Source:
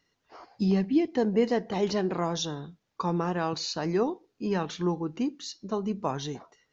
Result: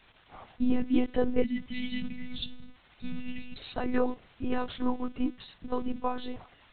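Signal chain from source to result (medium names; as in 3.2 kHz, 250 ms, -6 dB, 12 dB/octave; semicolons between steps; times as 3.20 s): spectral selection erased 1.42–3.58 s, 260–1900 Hz; crackle 510 per s -40 dBFS; monotone LPC vocoder at 8 kHz 250 Hz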